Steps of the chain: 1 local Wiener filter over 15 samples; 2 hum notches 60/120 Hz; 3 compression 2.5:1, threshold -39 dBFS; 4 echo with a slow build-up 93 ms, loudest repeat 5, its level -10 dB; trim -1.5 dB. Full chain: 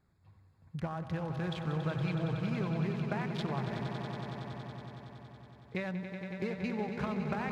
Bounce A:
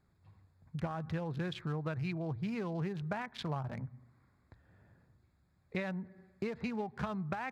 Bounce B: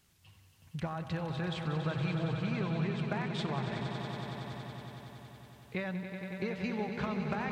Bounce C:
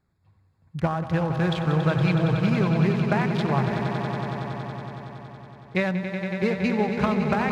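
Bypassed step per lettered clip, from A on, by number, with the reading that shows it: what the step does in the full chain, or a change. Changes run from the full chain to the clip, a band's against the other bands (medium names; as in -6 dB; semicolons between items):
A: 4, echo-to-direct -0.5 dB to none; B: 1, 4 kHz band +3.5 dB; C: 3, mean gain reduction 10.5 dB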